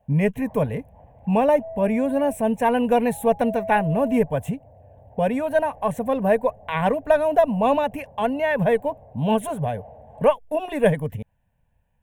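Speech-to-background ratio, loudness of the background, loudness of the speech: 18.5 dB, -41.0 LUFS, -22.5 LUFS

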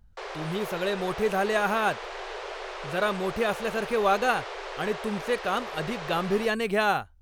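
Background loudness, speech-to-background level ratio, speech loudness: -37.0 LUFS, 9.5 dB, -27.5 LUFS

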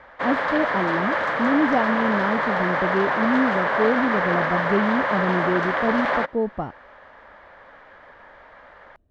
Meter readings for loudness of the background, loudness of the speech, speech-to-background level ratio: -23.0 LUFS, -25.0 LUFS, -2.0 dB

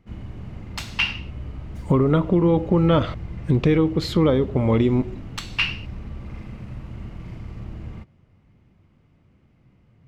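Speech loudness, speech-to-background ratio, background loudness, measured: -21.0 LUFS, 15.0 dB, -36.0 LUFS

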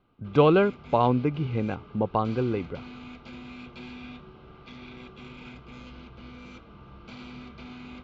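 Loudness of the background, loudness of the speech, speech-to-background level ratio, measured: -44.5 LUFS, -25.0 LUFS, 19.5 dB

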